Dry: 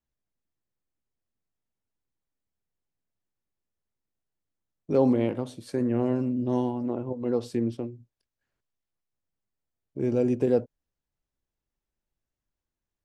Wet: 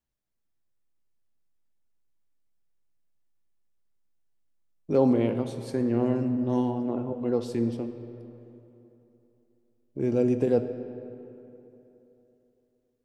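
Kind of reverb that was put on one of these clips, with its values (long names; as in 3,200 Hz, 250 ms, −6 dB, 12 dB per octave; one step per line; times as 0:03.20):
comb and all-pass reverb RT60 3.2 s, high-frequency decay 0.6×, pre-delay 0 ms, DRR 9 dB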